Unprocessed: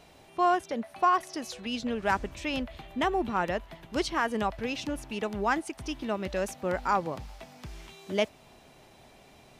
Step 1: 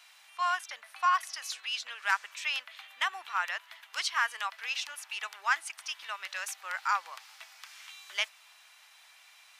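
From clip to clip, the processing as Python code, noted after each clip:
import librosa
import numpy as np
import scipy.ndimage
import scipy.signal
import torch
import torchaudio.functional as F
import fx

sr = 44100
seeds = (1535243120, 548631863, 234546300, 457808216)

y = scipy.signal.sosfilt(scipy.signal.butter(4, 1200.0, 'highpass', fs=sr, output='sos'), x)
y = F.gain(torch.from_numpy(y), 3.5).numpy()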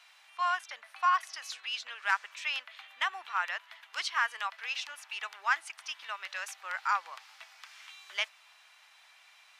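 y = fx.high_shelf(x, sr, hz=6800.0, db=-10.5)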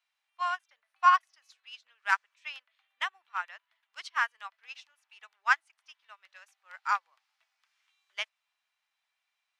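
y = fx.upward_expand(x, sr, threshold_db=-43.0, expansion=2.5)
y = F.gain(torch.from_numpy(y), 7.0).numpy()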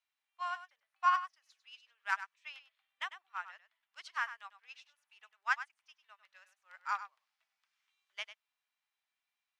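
y = x + 10.0 ** (-12.5 / 20.0) * np.pad(x, (int(99 * sr / 1000.0), 0))[:len(x)]
y = F.gain(torch.from_numpy(y), -7.5).numpy()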